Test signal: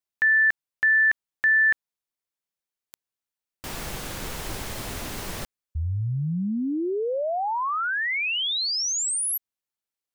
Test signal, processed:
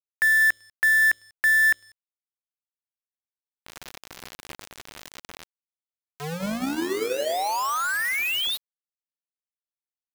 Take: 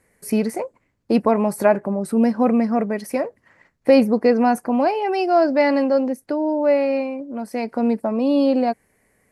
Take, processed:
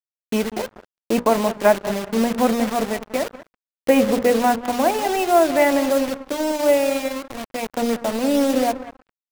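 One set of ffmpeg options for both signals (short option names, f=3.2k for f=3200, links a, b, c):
-filter_complex "[0:a]highpass=f=260:p=1,aresample=8000,aresample=44100,acrusher=bits=4:mix=0:aa=0.000001,bandreject=f=60:t=h:w=6,bandreject=f=120:t=h:w=6,bandreject=f=180:t=h:w=6,bandreject=f=240:t=h:w=6,bandreject=f=300:t=h:w=6,bandreject=f=360:t=h:w=6,bandreject=f=420:t=h:w=6,bandreject=f=480:t=h:w=6,bandreject=f=540:t=h:w=6,bandreject=f=600:t=h:w=6,asplit=2[a][b];[b]adelay=193,lowpass=f=910:p=1,volume=-10dB,asplit=2[c][d];[d]adelay=193,lowpass=f=910:p=1,volume=0.4,asplit=2[e][f];[f]adelay=193,lowpass=f=910:p=1,volume=0.4,asplit=2[g][h];[h]adelay=193,lowpass=f=910:p=1,volume=0.4[i];[c][e][g][i]amix=inputs=4:normalize=0[j];[a][j]amix=inputs=2:normalize=0,aeval=exprs='sgn(val(0))*max(abs(val(0))-0.02,0)':c=same,volume=2.5dB"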